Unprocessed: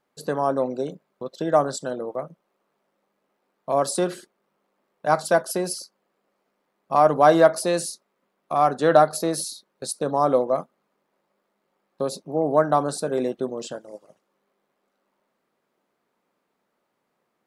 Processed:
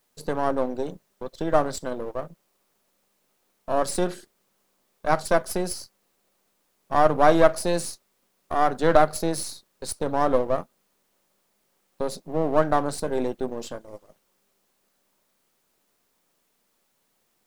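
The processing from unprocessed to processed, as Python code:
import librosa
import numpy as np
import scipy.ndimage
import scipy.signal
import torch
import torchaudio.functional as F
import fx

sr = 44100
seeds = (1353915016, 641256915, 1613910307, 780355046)

y = np.where(x < 0.0, 10.0 ** (-7.0 / 20.0) * x, x)
y = fx.low_shelf(y, sr, hz=150.0, db=5.5)
y = fx.quant_dither(y, sr, seeds[0], bits=12, dither='triangular')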